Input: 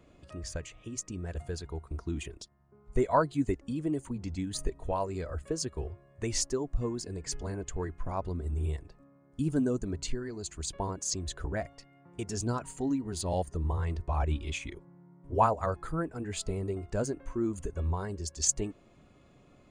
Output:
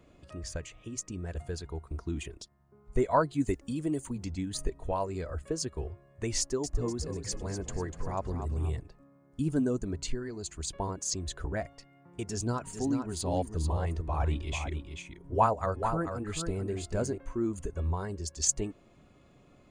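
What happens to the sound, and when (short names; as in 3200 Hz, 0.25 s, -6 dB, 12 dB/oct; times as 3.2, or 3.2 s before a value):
3.4–4.28 high shelf 4400 Hz +9.5 dB
6.39–8.8 frequency-shifting echo 0.245 s, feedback 41%, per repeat +38 Hz, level -9 dB
12.23–17.18 echo 0.439 s -7 dB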